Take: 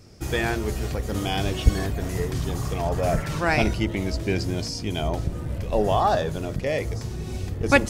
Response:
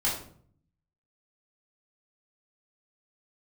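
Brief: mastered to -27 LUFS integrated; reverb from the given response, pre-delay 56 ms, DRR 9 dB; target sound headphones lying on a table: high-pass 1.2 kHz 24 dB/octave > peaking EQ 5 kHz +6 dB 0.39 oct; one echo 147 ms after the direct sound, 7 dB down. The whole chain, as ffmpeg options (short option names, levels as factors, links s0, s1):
-filter_complex "[0:a]aecho=1:1:147:0.447,asplit=2[s0][s1];[1:a]atrim=start_sample=2205,adelay=56[s2];[s1][s2]afir=irnorm=-1:irlink=0,volume=0.126[s3];[s0][s3]amix=inputs=2:normalize=0,highpass=f=1200:w=0.5412,highpass=f=1200:w=1.3066,equalizer=f=5000:t=o:w=0.39:g=6,volume=1.58"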